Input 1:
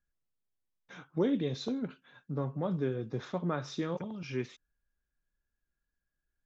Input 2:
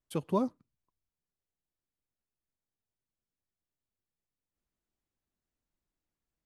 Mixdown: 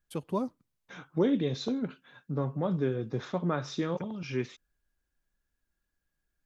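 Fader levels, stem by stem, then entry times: +3.0, −2.0 decibels; 0.00, 0.00 seconds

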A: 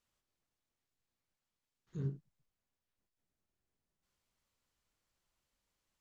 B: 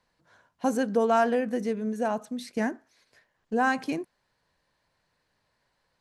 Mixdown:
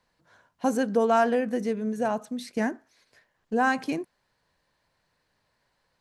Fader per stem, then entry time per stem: −16.5, +1.0 decibels; 0.00, 0.00 seconds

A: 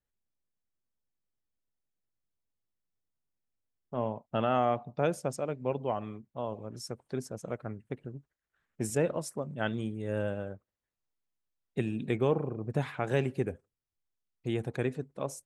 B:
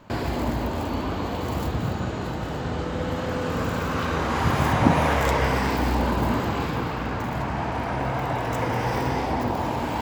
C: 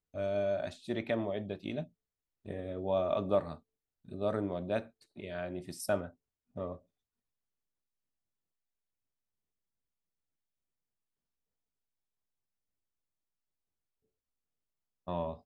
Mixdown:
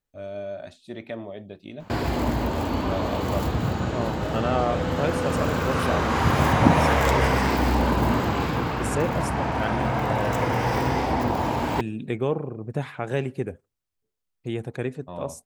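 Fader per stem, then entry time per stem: +2.5, +1.5, −1.5 decibels; 0.00, 1.80, 0.00 seconds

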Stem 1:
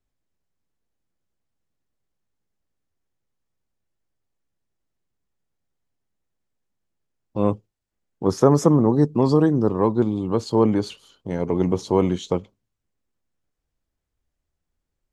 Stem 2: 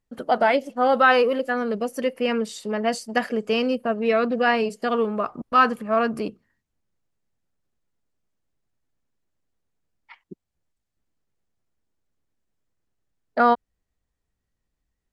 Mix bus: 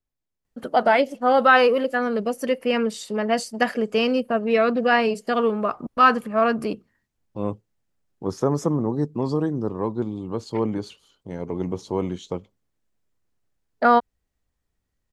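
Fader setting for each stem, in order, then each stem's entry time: −6.5, +1.5 decibels; 0.00, 0.45 seconds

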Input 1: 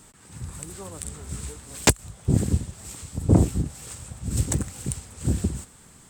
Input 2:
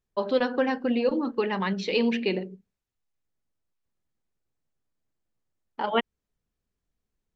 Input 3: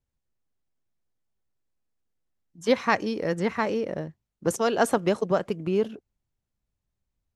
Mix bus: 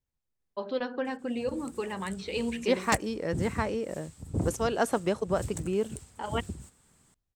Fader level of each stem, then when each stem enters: −13.0, −7.5, −4.5 decibels; 1.05, 0.40, 0.00 seconds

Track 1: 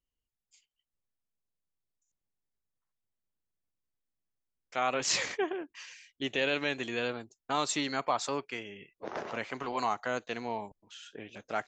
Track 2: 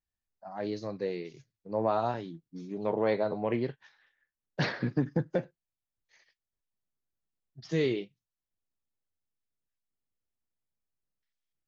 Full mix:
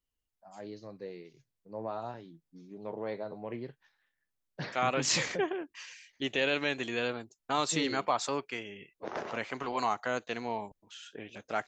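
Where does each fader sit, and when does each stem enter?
+0.5, −9.5 decibels; 0.00, 0.00 seconds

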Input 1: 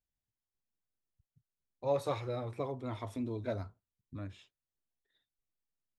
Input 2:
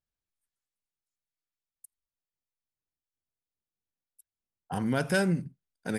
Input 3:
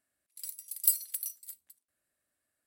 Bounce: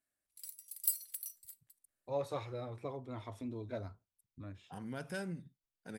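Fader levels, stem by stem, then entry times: −5.0, −15.0, −7.5 decibels; 0.25, 0.00, 0.00 seconds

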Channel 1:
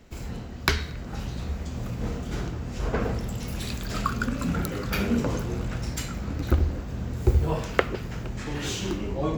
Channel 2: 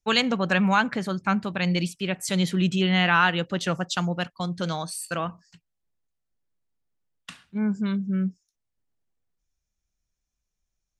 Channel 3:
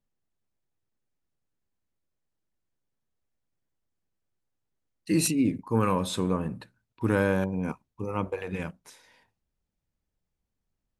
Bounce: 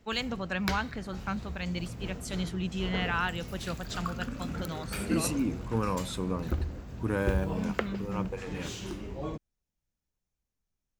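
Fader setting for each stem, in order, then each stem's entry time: −9.0, −10.5, −5.5 decibels; 0.00, 0.00, 0.00 seconds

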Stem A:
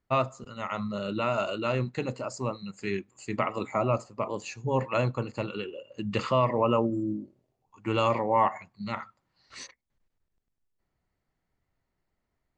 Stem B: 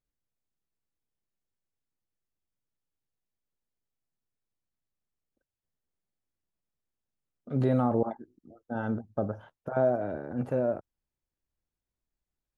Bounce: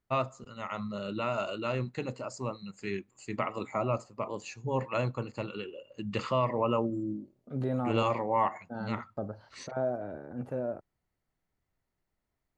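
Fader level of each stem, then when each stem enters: −4.0, −6.0 decibels; 0.00, 0.00 seconds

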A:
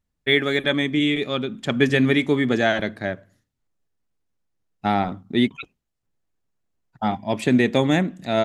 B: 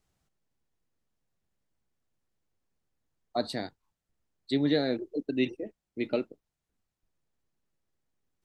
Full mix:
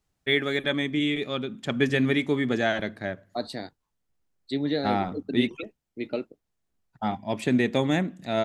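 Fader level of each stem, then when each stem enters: −5.0, −1.0 decibels; 0.00, 0.00 seconds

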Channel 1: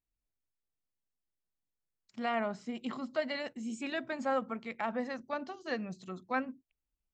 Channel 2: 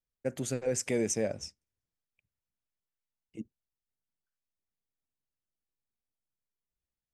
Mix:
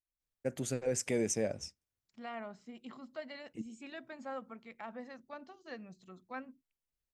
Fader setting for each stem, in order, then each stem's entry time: −10.5, −2.5 decibels; 0.00, 0.20 seconds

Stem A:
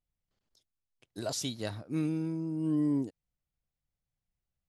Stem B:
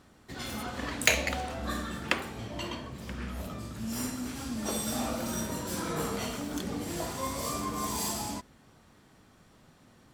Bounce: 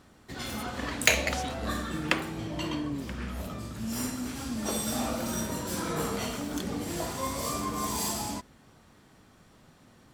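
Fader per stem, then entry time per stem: −5.5, +1.5 decibels; 0.00, 0.00 seconds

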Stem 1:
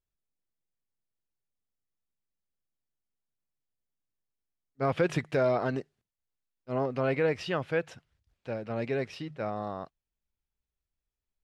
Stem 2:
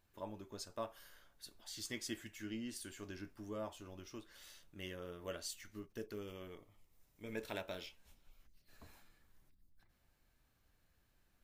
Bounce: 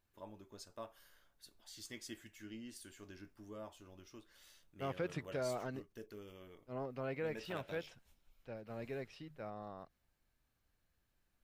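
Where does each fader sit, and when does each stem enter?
−13.0, −5.5 decibels; 0.00, 0.00 seconds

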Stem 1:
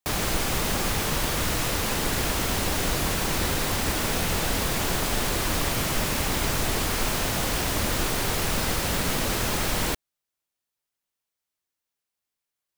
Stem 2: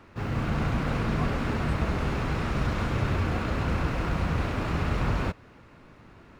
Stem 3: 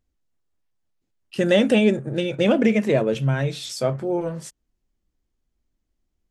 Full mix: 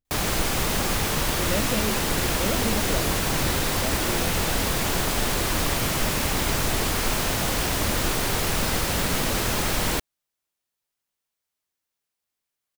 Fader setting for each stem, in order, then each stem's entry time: +1.5 dB, muted, −12.0 dB; 0.05 s, muted, 0.00 s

